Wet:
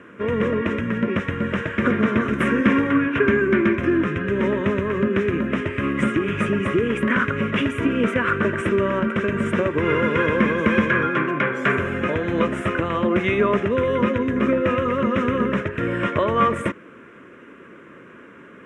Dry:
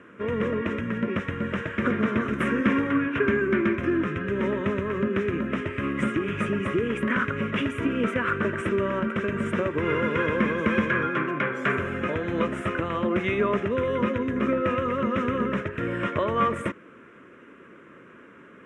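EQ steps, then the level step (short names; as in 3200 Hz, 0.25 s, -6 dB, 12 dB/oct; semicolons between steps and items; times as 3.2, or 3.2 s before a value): notch 1300 Hz, Q 27; +5.0 dB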